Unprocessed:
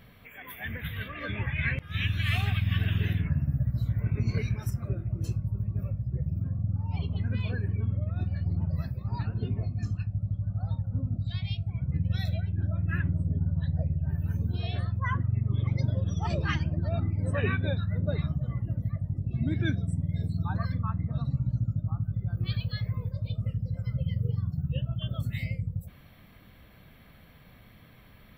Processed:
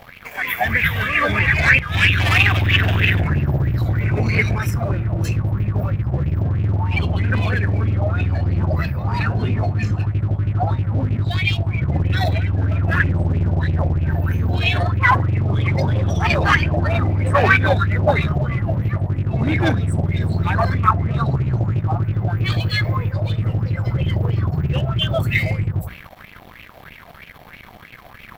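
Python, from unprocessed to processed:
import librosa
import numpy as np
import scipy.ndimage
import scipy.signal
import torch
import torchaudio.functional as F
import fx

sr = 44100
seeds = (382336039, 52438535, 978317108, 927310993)

y = fx.hum_notches(x, sr, base_hz=60, count=4)
y = fx.leveller(y, sr, passes=3)
y = fx.bell_lfo(y, sr, hz=3.1, low_hz=680.0, high_hz=2600.0, db=17)
y = F.gain(torch.from_numpy(y), 2.5).numpy()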